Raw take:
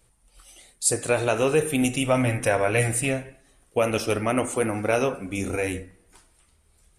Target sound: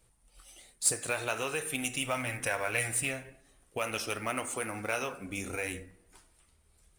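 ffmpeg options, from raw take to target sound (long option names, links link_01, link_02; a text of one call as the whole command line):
ffmpeg -i in.wav -filter_complex "[0:a]acrossover=split=900[link_01][link_02];[link_01]acompressor=threshold=-33dB:ratio=6[link_03];[link_02]acrusher=bits=4:mode=log:mix=0:aa=0.000001[link_04];[link_03][link_04]amix=inputs=2:normalize=0,volume=-4.5dB" out.wav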